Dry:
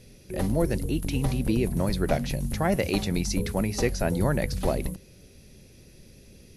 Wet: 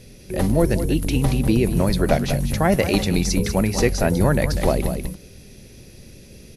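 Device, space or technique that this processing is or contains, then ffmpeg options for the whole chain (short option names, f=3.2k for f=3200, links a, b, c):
ducked delay: -filter_complex "[0:a]asplit=3[a][b][c];[b]adelay=194,volume=-4dB[d];[c]apad=whole_len=298197[e];[d][e]sidechaincompress=threshold=-30dB:ratio=8:attack=16:release=233[f];[a][f]amix=inputs=2:normalize=0,volume=6.5dB"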